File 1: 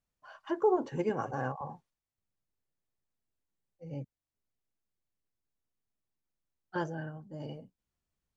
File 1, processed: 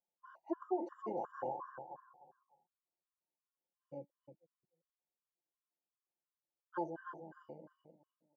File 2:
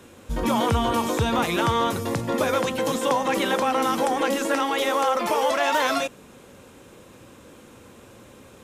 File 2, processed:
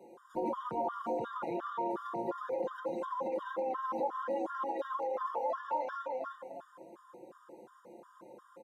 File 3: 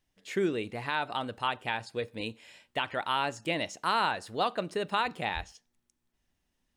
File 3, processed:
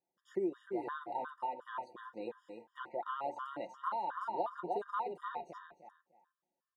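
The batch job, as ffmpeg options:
ffmpeg -i in.wav -filter_complex "[0:a]highpass=320,acrossover=split=4800[link_01][link_02];[link_02]acompressor=threshold=-49dB:ratio=4:attack=1:release=60[link_03];[link_01][link_03]amix=inputs=2:normalize=0,asplit=2[link_04][link_05];[link_05]adelay=301,lowpass=frequency=3500:poles=1,volume=-6dB,asplit=2[link_06][link_07];[link_07]adelay=301,lowpass=frequency=3500:poles=1,volume=0.23,asplit=2[link_08][link_09];[link_09]adelay=301,lowpass=frequency=3500:poles=1,volume=0.23[link_10];[link_06][link_08][link_10]amix=inputs=3:normalize=0[link_11];[link_04][link_11]amix=inputs=2:normalize=0,alimiter=limit=-16.5dB:level=0:latency=1:release=27,aecho=1:1:5.7:0.56,flanger=delay=2.3:depth=1.6:regen=78:speed=0.4:shape=triangular,acompressor=threshold=-31dB:ratio=6,highshelf=frequency=1600:width_type=q:width=1.5:gain=-13.5,afftfilt=real='re*gt(sin(2*PI*2.8*pts/sr)*(1-2*mod(floor(b*sr/1024/950),2)),0)':imag='im*gt(sin(2*PI*2.8*pts/sr)*(1-2*mod(floor(b*sr/1024/950),2)),0)':win_size=1024:overlap=0.75" out.wav

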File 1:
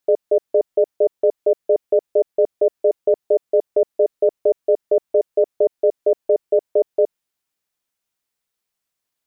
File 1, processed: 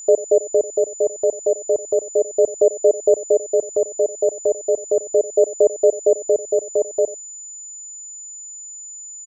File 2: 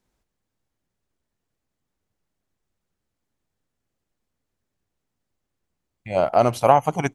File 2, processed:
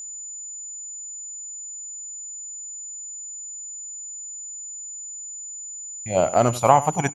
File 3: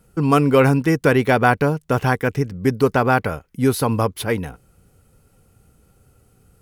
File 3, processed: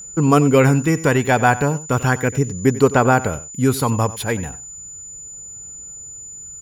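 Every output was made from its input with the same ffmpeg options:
ffmpeg -i in.wav -af "aphaser=in_gain=1:out_gain=1:delay=1.2:decay=0.27:speed=0.35:type=sinusoidal,aecho=1:1:92:0.141,aeval=exprs='val(0)+0.0224*sin(2*PI*7000*n/s)':channel_layout=same" out.wav

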